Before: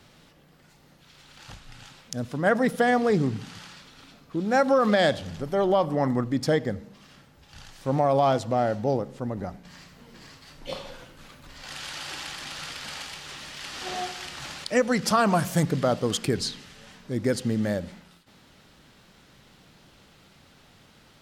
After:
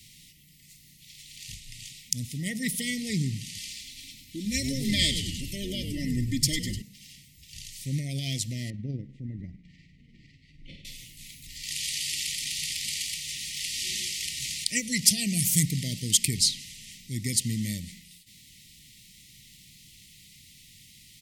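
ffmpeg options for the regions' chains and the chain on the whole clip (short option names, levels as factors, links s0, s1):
-filter_complex "[0:a]asettb=1/sr,asplit=3[s0][s1][s2];[s0]atrim=end=3.574[s3];[s1]atrim=start=3.57:end=6.82,asetpts=PTS-STARTPTS,afade=t=in:d=0.004:c=qsin,afade=t=out:st=3.246:d=0.004:c=qsin,aecho=1:1:3.4:0.71,atrim=end_sample=143325,asplit=9[s4][s5][s6][s7][s8][s9][s10][s11][s12];[s5]adelay=100,afreqshift=-130,volume=0.299[s13];[s6]adelay=200,afreqshift=-260,volume=0.184[s14];[s7]adelay=300,afreqshift=-390,volume=0.115[s15];[s8]adelay=400,afreqshift=-520,volume=0.0708[s16];[s9]adelay=500,afreqshift=-650,volume=0.0442[s17];[s10]adelay=600,afreqshift=-780,volume=0.0272[s18];[s11]adelay=700,afreqshift=-910,volume=0.017[s19];[s12]adelay=800,afreqshift=-1040,volume=0.0105[s20];[s4][s13][s14][s15][s16][s17][s18][s19][s20]amix=inputs=9:normalize=0,atrim=end_sample=143325[s21];[s2]atrim=start=6.816[s22];[s3][s21]acrossfade=d=0.004:c1=hsin:c2=qsin[s23];[s23][s22]acrossfade=d=0.004:c1=qsin:c2=hsin,asettb=1/sr,asplit=3[s24][s25][s26];[s24]atrim=end=8.704[s27];[s25]atrim=start=8.7:end=10.85,asetpts=PTS-STARTPTS,afade=t=in:d=0.004:c=qsin,afade=t=out:st=2.146:d=0.004:c=qsin,lowpass=1500,equalizer=f=310:t=o:w=0.32:g=5,tremolo=f=20:d=0.37[s28];[s26]atrim=start=10.846[s29];[s27][s28]acrossfade=d=0.004:c1=hsin:c2=qsin[s30];[s30][s29]acrossfade=d=0.004:c1=qsin:c2=hsin,afftfilt=real='re*(1-between(b*sr/4096,700,1800))':imag='im*(1-between(b*sr/4096,700,1800))':win_size=4096:overlap=0.75,firequalizer=gain_entry='entry(140,0);entry(570,-29);entry(1200,-29);entry(2000,2);entry(8800,14)':delay=0.05:min_phase=1"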